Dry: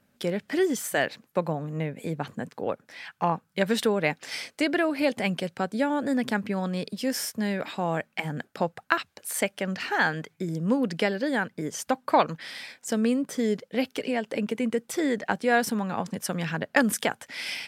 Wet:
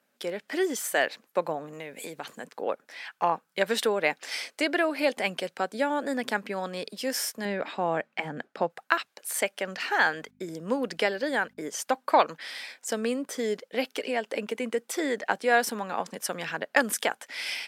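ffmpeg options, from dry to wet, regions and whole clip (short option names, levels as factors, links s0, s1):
-filter_complex "[0:a]asettb=1/sr,asplit=3[s0][s1][s2];[s0]atrim=end=1.734[s3];[s1]atrim=start=1.73:end=2.44,asetpts=PTS-STARTPTS,afade=t=in:d=0.004:c=qsin,afade=t=out:st=0.706:d=0.004:c=qsin,highshelf=f=2500:g=10,acompressor=threshold=0.0224:ratio=2.5:attack=3.2:release=140:knee=1:detection=peak[s4];[s2]atrim=start=2.436[s5];[s3][s4]acrossfade=d=0.004:c1=hsin:c2=qsin[s6];[s6][s5]acrossfade=d=0.004:c1=qsin:c2=hsin,asettb=1/sr,asplit=3[s7][s8][s9];[s7]atrim=end=7.454[s10];[s8]atrim=start=7.45:end=8.7,asetpts=PTS-STARTPTS,afade=t=in:d=0.004:c=qsin,afade=t=out:st=1.246:d=0.004:c=qsin,highpass=120,aemphasis=mode=reproduction:type=bsi[s11];[s9]atrim=start=8.696[s12];[s10][s11]acrossfade=d=0.004:c1=hsin:c2=qsin[s13];[s13][s12]acrossfade=d=0.004:c1=qsin:c2=hsin,asettb=1/sr,asplit=3[s14][s15][s16];[s14]atrim=end=10.054[s17];[s15]atrim=start=10.05:end=11.69,asetpts=PTS-STARTPTS,afade=t=in:d=0.004:c=qsin,afade=t=out:st=1.636:d=0.004:c=qsin,agate=range=0.158:threshold=0.00224:ratio=16:release=100:detection=peak,aeval=exprs='val(0)+0.00631*(sin(2*PI*50*n/s)+sin(2*PI*2*50*n/s)/2+sin(2*PI*3*50*n/s)/3+sin(2*PI*4*50*n/s)/4+sin(2*PI*5*50*n/s)/5)':c=same[s18];[s16]atrim=start=11.686[s19];[s17][s18]acrossfade=d=0.004:c1=hsin:c2=qsin[s20];[s20][s19]acrossfade=d=0.004:c1=qsin:c2=hsin,highpass=380,dynaudnorm=f=360:g=3:m=1.41,volume=0.794"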